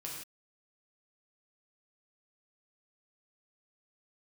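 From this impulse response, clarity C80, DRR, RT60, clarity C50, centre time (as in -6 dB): 4.0 dB, -3.5 dB, not exponential, 2.0 dB, 50 ms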